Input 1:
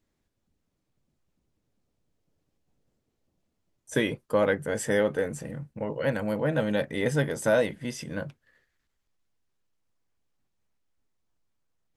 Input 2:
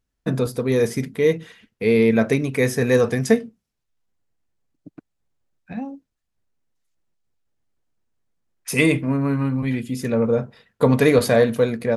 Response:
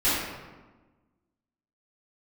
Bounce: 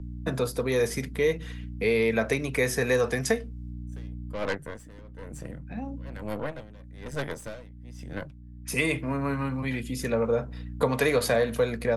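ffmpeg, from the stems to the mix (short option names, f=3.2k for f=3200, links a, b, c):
-filter_complex "[0:a]aeval=exprs='0.299*(cos(1*acos(clip(val(0)/0.299,-1,1)))-cos(1*PI/2))+0.0422*(cos(8*acos(clip(val(0)/0.299,-1,1)))-cos(8*PI/2))':c=same,aeval=exprs='val(0)*pow(10,-27*(0.5-0.5*cos(2*PI*1.1*n/s))/20)':c=same,volume=-3.5dB,asplit=2[a][b];[1:a]aeval=exprs='val(0)+0.02*(sin(2*PI*60*n/s)+sin(2*PI*2*60*n/s)/2+sin(2*PI*3*60*n/s)/3+sin(2*PI*4*60*n/s)/4+sin(2*PI*5*60*n/s)/5)':c=same,volume=-0.5dB[c];[b]apad=whole_len=527597[d];[c][d]sidechaincompress=threshold=-40dB:ratio=8:attack=26:release=964[e];[a][e]amix=inputs=2:normalize=0,acrossover=split=120|470[f][g][h];[f]acompressor=threshold=-37dB:ratio=4[i];[g]acompressor=threshold=-34dB:ratio=4[j];[h]acompressor=threshold=-22dB:ratio=4[k];[i][j][k]amix=inputs=3:normalize=0"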